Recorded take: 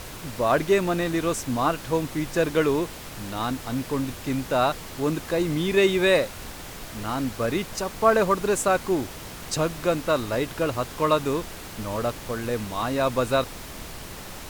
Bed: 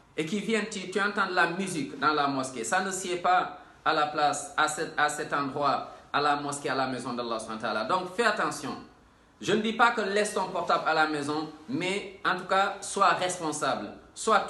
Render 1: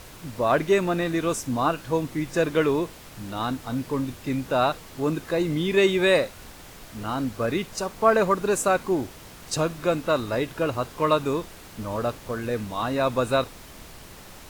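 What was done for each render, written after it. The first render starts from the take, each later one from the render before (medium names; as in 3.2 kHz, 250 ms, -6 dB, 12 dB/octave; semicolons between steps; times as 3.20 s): noise print and reduce 6 dB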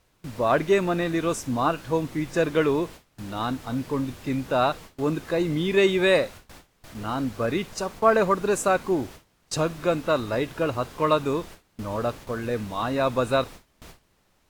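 gate with hold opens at -31 dBFS; treble shelf 7.5 kHz -4.5 dB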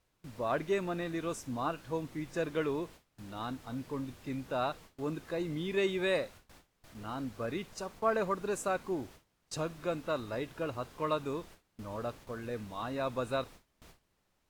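trim -11 dB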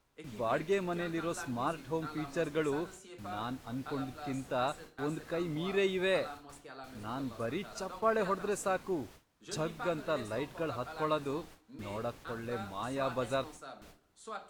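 add bed -20 dB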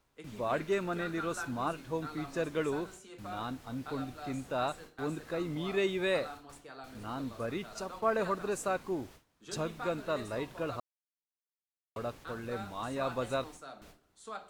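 0.59–1.64 s: peaking EQ 1.4 kHz +7 dB 0.33 oct; 10.80–11.96 s: mute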